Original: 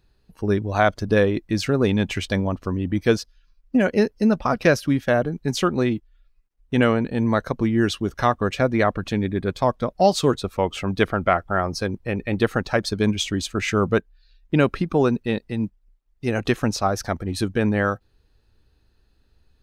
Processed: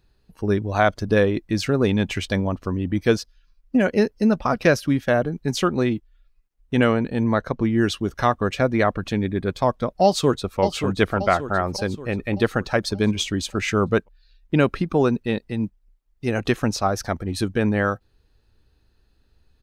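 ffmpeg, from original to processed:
-filter_complex "[0:a]asettb=1/sr,asplit=3[a][b][c];[a]atrim=end=7.234[d];[b]atrim=start=7.23:end=7.7,asetpts=PTS-STARTPTS,afade=t=in:d=0.004:c=qsin,afade=t=out:st=0.466:d=0.004:c=qsin,highshelf=f=6.8k:g=-11.5[e];[c]atrim=start=7.696[f];[d][e]acrossfade=d=0.004:c1=hsin:c2=qsin[g];[g][f]acrossfade=d=0.004:c1=qsin:c2=hsin,asplit=2[h][i];[i]afade=t=in:st=10.04:d=0.01,afade=t=out:st=10.6:d=0.01,aecho=0:1:580|1160|1740|2320|2900|3480:0.446684|0.223342|0.111671|0.0558354|0.0279177|0.0139589[j];[h][j]amix=inputs=2:normalize=0"

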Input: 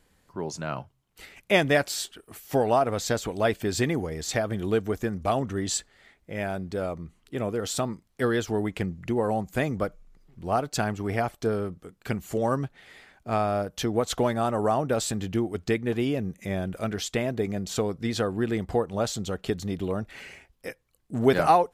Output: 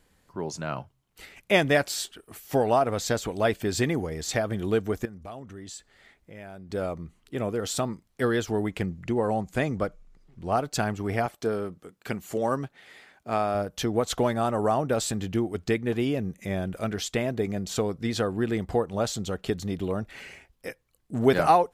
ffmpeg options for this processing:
-filter_complex "[0:a]asettb=1/sr,asplit=3[a][b][c];[a]atrim=end=5.054[d];[b]atrim=start=5.05:end=6.7,asetpts=PTS-STARTPTS,afade=t=in:d=0.004:c=qsin,afade=t=out:st=1.646:d=0.004:c=qsin,acompressor=threshold=-49dB:ratio=2:attack=3.2:release=140:knee=1:detection=peak[e];[c]atrim=start=6.696[f];[d][e]acrossfade=d=0.004:c1=hsin:c2=qsin[g];[g][f]acrossfade=d=0.004:c1=qsin:c2=hsin,asettb=1/sr,asplit=3[h][i][j];[h]atrim=end=9.034[k];[i]atrim=start=9.03:end=10.57,asetpts=PTS-STARTPTS,afade=t=in:d=0.004:c=qsin,afade=t=out:st=1.536:d=0.004:c=qsin,lowpass=10k[l];[j]atrim=start=10.566[m];[k][l]acrossfade=d=0.004:c1=hsin:c2=qsin[n];[n][m]acrossfade=d=0.004:c1=qsin:c2=hsin,asettb=1/sr,asplit=3[o][p][q];[o]atrim=end=11.264[r];[p]atrim=start=11.26:end=13.55,asetpts=PTS-STARTPTS,afade=t=in:d=0.004:c=qsin,afade=t=out:st=2.286:d=0.004:c=qsin,highpass=f=190:p=1[s];[q]atrim=start=13.546[t];[r][s]acrossfade=d=0.004:c1=hsin:c2=qsin[u];[u][t]acrossfade=d=0.004:c1=qsin:c2=hsin"

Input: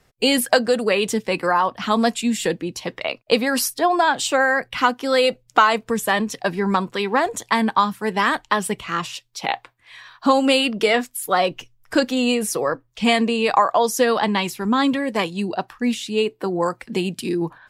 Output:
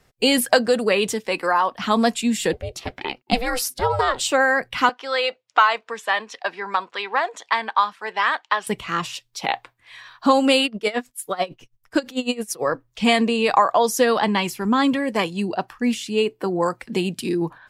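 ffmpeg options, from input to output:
-filter_complex "[0:a]asettb=1/sr,asplit=3[a][b][c];[a]atrim=end=1.134[d];[b]atrim=start=1.13:end=1.79,asetpts=PTS-STARTPTS,afade=t=in:d=0.004:c=qsin,afade=t=out:st=0.656:d=0.004:c=qsin,equalizer=f=93:t=o:w=2.2:g=-14.5[e];[c]atrim=start=1.786[f];[d][e]acrossfade=d=0.004:c1=hsin:c2=qsin[g];[g][f]acrossfade=d=0.004:c1=qsin:c2=hsin,asettb=1/sr,asplit=3[h][i][j];[h]atrim=end=2.534[k];[i]atrim=start=2.53:end=4.21,asetpts=PTS-STARTPTS,afade=t=in:d=0.004:c=qsin,afade=t=out:st=1.676:d=0.004:c=qsin,aeval=exprs='val(0)*sin(2*PI*250*n/s)':c=same[l];[j]atrim=start=4.206[m];[k][l]acrossfade=d=0.004:c1=hsin:c2=qsin[n];[n][m]acrossfade=d=0.004:c1=qsin:c2=hsin,asettb=1/sr,asplit=3[o][p][q];[o]atrim=end=4.894[r];[p]atrim=start=4.89:end=8.67,asetpts=PTS-STARTPTS,afade=t=in:d=0.004:c=qsin,afade=t=out:st=3.776:d=0.004:c=qsin,highpass=720,lowpass=4.2k[s];[q]atrim=start=8.666[t];[r][s]acrossfade=d=0.004:c1=hsin:c2=qsin[u];[u][t]acrossfade=d=0.004:c1=qsin:c2=hsin,asettb=1/sr,asplit=3[v][w][x];[v]atrim=end=10.654[y];[w]atrim=start=10.65:end=12.63,asetpts=PTS-STARTPTS,afade=t=in:d=0.004:c=qsin,afade=t=out:st=1.976:d=0.004:c=qsin,aeval=exprs='val(0)*pow(10,-21*(0.5-0.5*cos(2*PI*9.1*n/s))/20)':c=same[z];[x]atrim=start=12.626[aa];[y][z]acrossfade=d=0.004:c1=hsin:c2=qsin[ab];[ab][aa]acrossfade=d=0.004:c1=qsin:c2=hsin,asettb=1/sr,asplit=3[ac][ad][ae];[ac]atrim=end=14.234[af];[ad]atrim=start=14.23:end=16.58,asetpts=PTS-STARTPTS,afade=t=in:d=0.004:c=qsin,afade=t=out:st=2.346:d=0.004:c=qsin,bandreject=f=3.8k:w=12[ag];[ae]atrim=start=16.576[ah];[af][ag]acrossfade=d=0.004:c1=hsin:c2=qsin[ai];[ai][ah]acrossfade=d=0.004:c1=qsin:c2=hsin"

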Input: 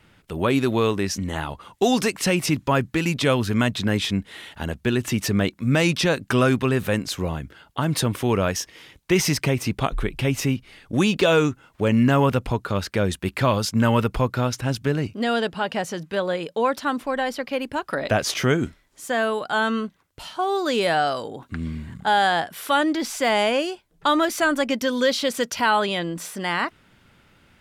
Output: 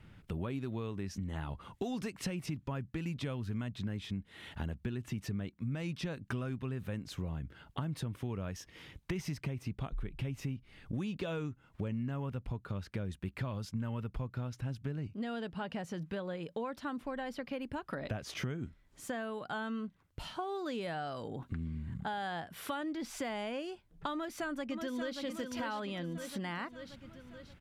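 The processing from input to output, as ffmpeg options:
-filter_complex "[0:a]asplit=2[a][b];[b]afade=t=in:st=24.13:d=0.01,afade=t=out:st=25.21:d=0.01,aecho=0:1:580|1160|1740|2320|2900:0.446684|0.201008|0.0904534|0.040704|0.0183168[c];[a][c]amix=inputs=2:normalize=0,bass=f=250:g=10,treble=f=4k:g=-5,acompressor=threshold=-30dB:ratio=5,volume=-6.5dB"

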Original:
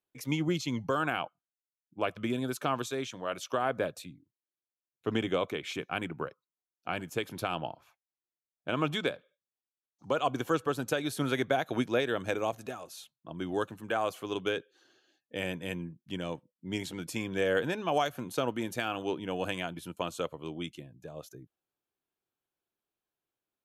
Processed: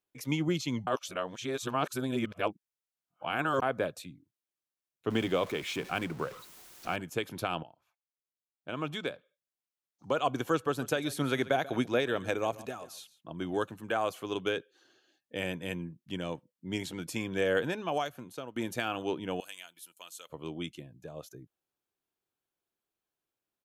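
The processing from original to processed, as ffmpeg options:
-filter_complex "[0:a]asettb=1/sr,asplit=3[a][b][c];[a]atrim=end=5.104[d];[b]atrim=start=5.1:end=6.96,asetpts=PTS-STARTPTS,afade=t=in:d=0.004:c=qsin,afade=t=out:st=1.856:d=0.004:c=qsin,aeval=exprs='val(0)+0.5*0.00794*sgn(val(0))':c=same[e];[c]atrim=start=6.956[f];[d][e]acrossfade=d=0.004:c1=hsin:c2=qsin[g];[g][f]acrossfade=d=0.004:c1=qsin:c2=hsin,asplit=3[h][i][j];[h]afade=t=out:st=10.8:d=0.02[k];[i]aecho=1:1:138:0.126,afade=t=in:st=10.8:d=0.02,afade=t=out:st=13.57:d=0.02[l];[j]afade=t=in:st=13.57:d=0.02[m];[k][l][m]amix=inputs=3:normalize=0,asettb=1/sr,asplit=3[n][o][p];[n]atrim=end=19.404[q];[o]atrim=start=19.4:end=20.3,asetpts=PTS-STARTPTS,afade=t=in:d=0.004:c=qsin,afade=t=out:st=0.896:d=0.004:c=qsin,aderivative[r];[p]atrim=start=20.296[s];[q][r]acrossfade=d=0.004:c1=hsin:c2=qsin[t];[t][s]acrossfade=d=0.004:c1=qsin:c2=hsin,asplit=5[u][v][w][x][y];[u]atrim=end=0.872[z];[v]atrim=start=0.868:end=3.622,asetpts=PTS-STARTPTS,areverse[aa];[w]atrim=start=3.618:end=7.63,asetpts=PTS-STARTPTS,afade=t=out:st=4.008:d=0.004:c=hsin:silence=0.133352[ab];[x]atrim=start=7.63:end=18.56,asetpts=PTS-STARTPTS,afade=t=in:d=2.58:silence=0.133352,afade=t=out:st=9.95:d=0.98:silence=0.16788[ac];[y]atrim=start=18.56,asetpts=PTS-STARTPTS,afade=t=in:d=0.004:c=hsin:silence=0.16788[ad];[z][aa]acrossfade=d=0.004:c1=hsin:c2=hsin[ae];[ab][ac][ad]concat=n=3:v=0:a=1[af];[ae][af]acrossfade=d=0.004:c1=hsin:c2=hsin"

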